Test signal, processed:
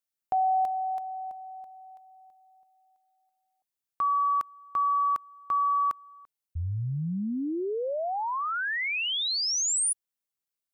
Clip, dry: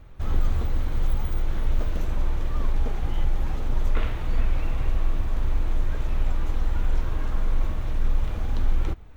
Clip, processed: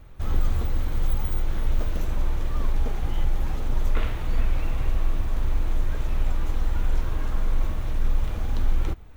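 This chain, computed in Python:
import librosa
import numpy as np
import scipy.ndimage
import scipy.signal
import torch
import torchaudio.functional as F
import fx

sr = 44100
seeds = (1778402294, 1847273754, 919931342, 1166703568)

y = fx.high_shelf(x, sr, hz=7300.0, db=7.0)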